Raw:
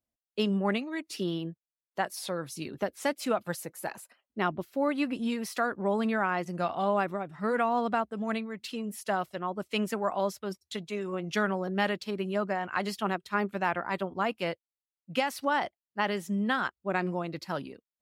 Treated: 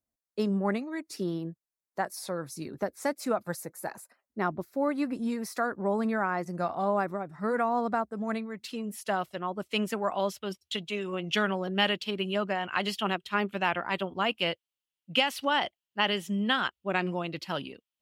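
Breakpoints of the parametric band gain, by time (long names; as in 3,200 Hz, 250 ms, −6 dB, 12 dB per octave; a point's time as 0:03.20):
parametric band 3,000 Hz 0.55 octaves
0:08.17 −14 dB
0:08.49 −6 dB
0:09.09 +3 dB
0:09.84 +3 dB
0:10.49 +12 dB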